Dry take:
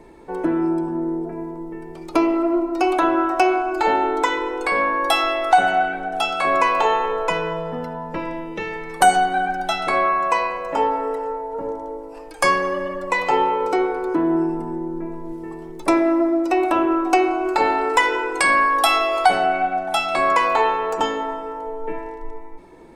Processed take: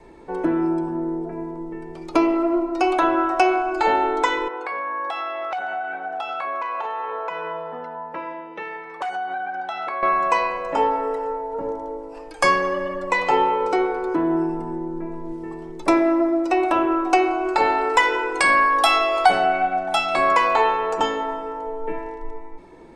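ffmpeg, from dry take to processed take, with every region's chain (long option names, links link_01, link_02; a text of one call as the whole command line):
ffmpeg -i in.wav -filter_complex "[0:a]asettb=1/sr,asplit=3[link_01][link_02][link_03];[link_01]atrim=end=4.484[link_04];[link_02]atrim=start=4.48:end=10.03,asetpts=PTS-STARTPTS,afade=type=in:duration=0.004:curve=qsin,afade=type=out:start_time=5.546:duration=0.004:curve=qsin,aeval=exprs='0.355*(abs(mod(val(0)/0.355+3,4)-2)-1)':channel_layout=same,bandpass=frequency=1100:width_type=q:width=0.89,acompressor=threshold=-24dB:ratio=6:attack=3.2:release=140:knee=1:detection=peak[link_05];[link_03]atrim=start=10.026[link_06];[link_04][link_05]acrossfade=duration=0.004:curve1=hsin:curve2=qsin[link_07];[link_07][link_06]acrossfade=duration=0.004:curve1=qsin:curve2=hsin,lowpass=8100,adynamicequalizer=threshold=0.0282:dfrequency=260:dqfactor=1.7:tfrequency=260:tqfactor=1.7:attack=5:release=100:ratio=0.375:range=2:mode=cutabove:tftype=bell" out.wav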